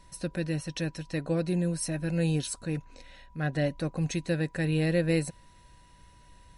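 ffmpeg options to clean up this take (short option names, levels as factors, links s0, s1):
-af "bandreject=f=980:w=30"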